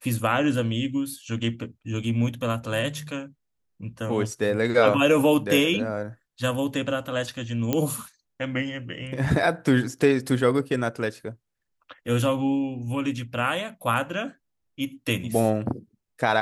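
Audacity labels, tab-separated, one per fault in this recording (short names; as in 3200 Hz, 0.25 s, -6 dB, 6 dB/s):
7.730000	7.730000	pop -9 dBFS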